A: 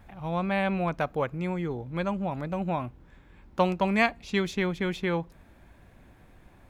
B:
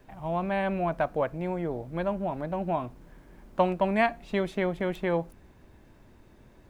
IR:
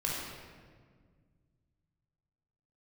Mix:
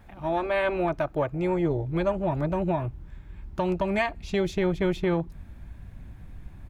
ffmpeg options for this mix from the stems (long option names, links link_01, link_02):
-filter_complex "[0:a]asubboost=boost=5:cutoff=190,volume=0.5dB[link_01];[1:a]afwtdn=0.0251,equalizer=frequency=340:width=1.5:gain=3.5,adelay=3.3,volume=2.5dB[link_02];[link_01][link_02]amix=inputs=2:normalize=0,alimiter=limit=-15.5dB:level=0:latency=1:release=212"